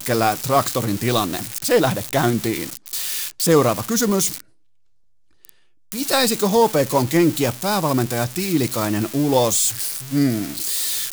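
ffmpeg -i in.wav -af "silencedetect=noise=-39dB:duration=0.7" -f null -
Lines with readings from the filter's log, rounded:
silence_start: 4.40
silence_end: 5.45 | silence_duration: 1.05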